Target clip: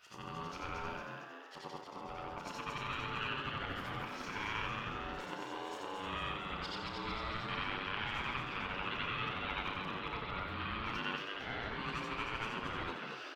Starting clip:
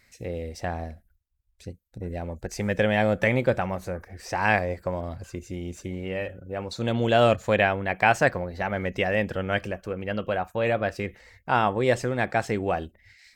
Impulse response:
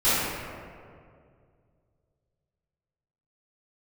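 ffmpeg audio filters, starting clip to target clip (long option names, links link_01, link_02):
-filter_complex "[0:a]afftfilt=real='re':imag='-im':win_size=8192:overlap=0.75,asoftclip=type=tanh:threshold=-12.5dB,adynamicequalizer=threshold=0.01:dfrequency=190:dqfactor=0.85:tfrequency=190:tqfactor=0.85:attack=5:release=100:ratio=0.375:range=1.5:mode=cutabove:tftype=bell,dynaudnorm=framelen=190:gausssize=7:maxgain=5.5dB,alimiter=limit=-13.5dB:level=0:latency=1:release=265,areverse,acompressor=threshold=-39dB:ratio=12,areverse,equalizer=frequency=125:width_type=o:width=1:gain=-11,equalizer=frequency=250:width_type=o:width=1:gain=5,equalizer=frequency=2000:width_type=o:width=1:gain=8,equalizer=frequency=4000:width_type=o:width=1:gain=8,equalizer=frequency=8000:width_type=o:width=1:gain=-8,aeval=exprs='val(0)*sin(2*PI*660*n/s)':channel_layout=same,asplit=2[link_01][link_02];[link_02]adelay=32,volume=-8.5dB[link_03];[link_01][link_03]amix=inputs=2:normalize=0,asplit=2[link_04][link_05];[link_05]asplit=8[link_06][link_07][link_08][link_09][link_10][link_11][link_12][link_13];[link_06]adelay=227,afreqshift=130,volume=-5dB[link_14];[link_07]adelay=454,afreqshift=260,volume=-9.9dB[link_15];[link_08]adelay=681,afreqshift=390,volume=-14.8dB[link_16];[link_09]adelay=908,afreqshift=520,volume=-19.6dB[link_17];[link_10]adelay=1135,afreqshift=650,volume=-24.5dB[link_18];[link_11]adelay=1362,afreqshift=780,volume=-29.4dB[link_19];[link_12]adelay=1589,afreqshift=910,volume=-34.3dB[link_20];[link_13]adelay=1816,afreqshift=1040,volume=-39.2dB[link_21];[link_14][link_15][link_16][link_17][link_18][link_19][link_20][link_21]amix=inputs=8:normalize=0[link_22];[link_04][link_22]amix=inputs=2:normalize=0,volume=1dB"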